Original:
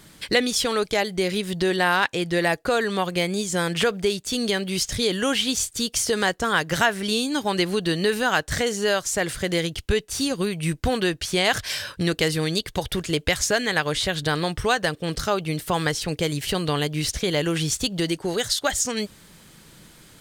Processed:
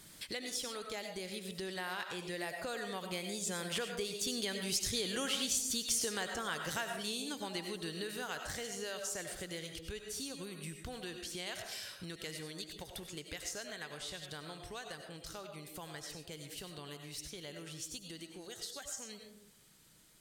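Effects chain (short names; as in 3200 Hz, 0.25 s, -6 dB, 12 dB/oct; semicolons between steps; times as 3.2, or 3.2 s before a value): Doppler pass-by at 5.09, 5 m/s, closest 6 m; on a send at -5 dB: low shelf 180 Hz -9.5 dB + reverb RT60 0.65 s, pre-delay 55 ms; on the sum: compressor 2:1, threshold -53 dBFS, peak gain reduction 18.5 dB; bell 15000 Hz +8.5 dB 2.2 oct; gain +2 dB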